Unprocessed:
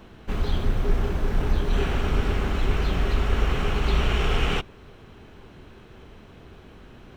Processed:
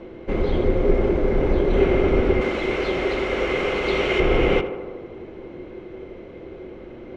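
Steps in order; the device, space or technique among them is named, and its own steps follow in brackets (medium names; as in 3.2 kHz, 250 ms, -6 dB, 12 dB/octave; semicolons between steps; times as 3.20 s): low-pass 6 kHz 12 dB/octave; inside a helmet (treble shelf 4.3 kHz -8 dB; small resonant body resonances 360/510/2100 Hz, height 17 dB, ringing for 40 ms); 2.41–4.20 s: tilt EQ +3 dB/octave; tape echo 82 ms, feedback 82%, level -9.5 dB, low-pass 1.9 kHz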